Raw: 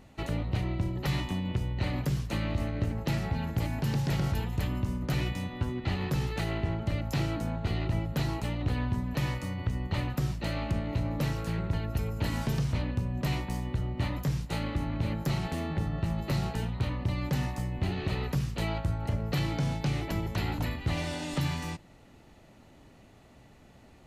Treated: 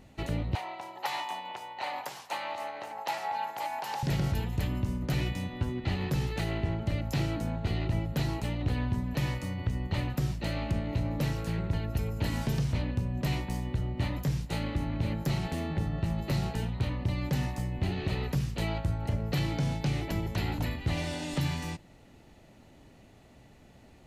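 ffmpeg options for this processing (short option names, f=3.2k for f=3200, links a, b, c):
-filter_complex "[0:a]asettb=1/sr,asplit=3[a][b][c];[a]atrim=end=0.554[d];[b]atrim=start=0.55:end=4.03,asetpts=PTS-STARTPTS,afade=t=in:d=0.004:c=qsin,afade=t=out:st=3.476:d=0.004:c=qsin,highpass=f=840:t=q:w=4.2[e];[c]atrim=start=4.026[f];[d][e]acrossfade=d=0.004:c1=hsin:c2=qsin[g];[g][f]acrossfade=d=0.004:c1=qsin:c2=hsin,equalizer=f=1.2k:w=2.2:g=-3.5"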